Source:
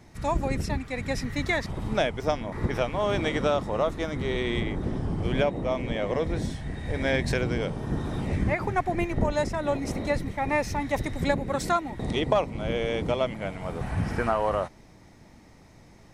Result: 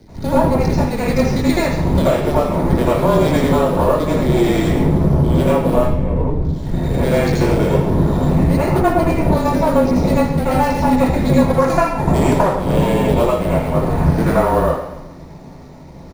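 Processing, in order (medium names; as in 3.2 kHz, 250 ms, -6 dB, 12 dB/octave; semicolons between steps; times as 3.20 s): careless resampling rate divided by 4×, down filtered, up hold; 11.34–12.55 s: graphic EQ 125/1000/2000/4000/8000 Hz +5/+11/+5/-11/+9 dB; half-wave rectifier; frequency shift -28 Hz; 5.78–6.45 s: RIAA curve playback; feedback delay 132 ms, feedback 44%, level -18 dB; compression 16:1, threshold -28 dBFS, peak gain reduction 18 dB; reverberation RT60 0.55 s, pre-delay 77 ms, DRR -11 dB; trim +2 dB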